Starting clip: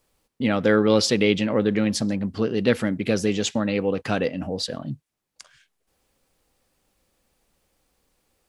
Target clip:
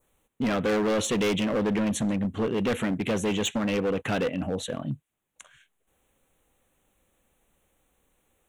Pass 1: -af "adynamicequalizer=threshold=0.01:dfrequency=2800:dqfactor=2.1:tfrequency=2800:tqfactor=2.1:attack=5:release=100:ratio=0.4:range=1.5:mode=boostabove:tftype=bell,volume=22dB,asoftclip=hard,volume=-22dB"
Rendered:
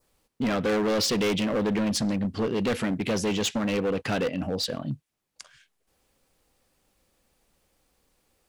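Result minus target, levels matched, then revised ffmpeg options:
4000 Hz band +3.5 dB
-af "adynamicequalizer=threshold=0.01:dfrequency=2800:dqfactor=2.1:tfrequency=2800:tqfactor=2.1:attack=5:release=100:ratio=0.4:range=1.5:mode=boostabove:tftype=bell,asuperstop=centerf=4900:order=4:qfactor=1.8,volume=22dB,asoftclip=hard,volume=-22dB"

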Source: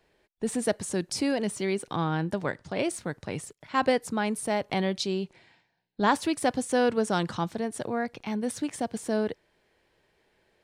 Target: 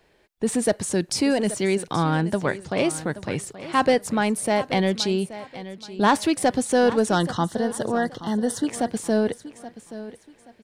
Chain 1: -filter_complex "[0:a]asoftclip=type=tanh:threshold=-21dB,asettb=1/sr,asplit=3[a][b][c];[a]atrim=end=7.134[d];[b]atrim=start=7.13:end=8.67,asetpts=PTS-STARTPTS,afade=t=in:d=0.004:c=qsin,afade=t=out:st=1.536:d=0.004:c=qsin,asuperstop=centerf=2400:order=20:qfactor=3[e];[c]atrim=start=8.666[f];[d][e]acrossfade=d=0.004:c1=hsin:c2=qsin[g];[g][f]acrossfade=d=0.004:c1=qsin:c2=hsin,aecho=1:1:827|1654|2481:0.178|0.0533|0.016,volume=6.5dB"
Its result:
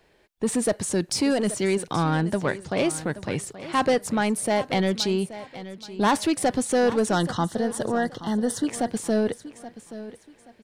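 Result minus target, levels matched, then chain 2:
soft clip: distortion +7 dB
-filter_complex "[0:a]asoftclip=type=tanh:threshold=-15dB,asettb=1/sr,asplit=3[a][b][c];[a]atrim=end=7.134[d];[b]atrim=start=7.13:end=8.67,asetpts=PTS-STARTPTS,afade=t=in:d=0.004:c=qsin,afade=t=out:st=1.536:d=0.004:c=qsin,asuperstop=centerf=2400:order=20:qfactor=3[e];[c]atrim=start=8.666[f];[d][e]acrossfade=d=0.004:c1=hsin:c2=qsin[g];[g][f]acrossfade=d=0.004:c1=qsin:c2=hsin,aecho=1:1:827|1654|2481:0.178|0.0533|0.016,volume=6.5dB"

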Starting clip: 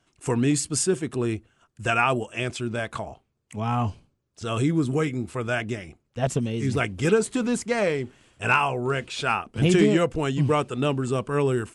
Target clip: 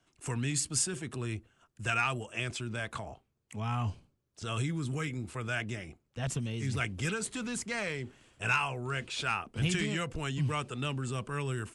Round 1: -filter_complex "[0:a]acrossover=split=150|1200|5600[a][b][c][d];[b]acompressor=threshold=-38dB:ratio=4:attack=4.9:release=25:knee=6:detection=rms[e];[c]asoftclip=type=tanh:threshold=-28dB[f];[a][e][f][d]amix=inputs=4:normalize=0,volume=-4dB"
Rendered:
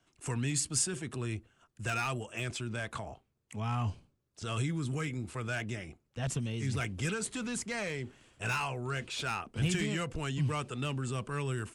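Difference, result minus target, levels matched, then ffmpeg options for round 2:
soft clip: distortion +12 dB
-filter_complex "[0:a]acrossover=split=150|1200|5600[a][b][c][d];[b]acompressor=threshold=-38dB:ratio=4:attack=4.9:release=25:knee=6:detection=rms[e];[c]asoftclip=type=tanh:threshold=-16dB[f];[a][e][f][d]amix=inputs=4:normalize=0,volume=-4dB"

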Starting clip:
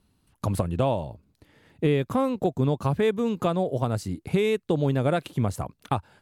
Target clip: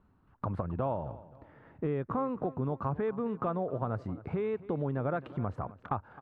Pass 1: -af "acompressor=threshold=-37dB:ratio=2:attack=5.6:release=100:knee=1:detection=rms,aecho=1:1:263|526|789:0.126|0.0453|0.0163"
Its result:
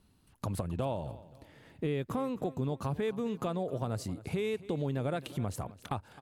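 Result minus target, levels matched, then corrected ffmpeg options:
1000 Hz band -3.0 dB
-af "acompressor=threshold=-37dB:ratio=2:attack=5.6:release=100:knee=1:detection=rms,lowpass=f=1.3k:t=q:w=1.9,aecho=1:1:263|526|789:0.126|0.0453|0.0163"

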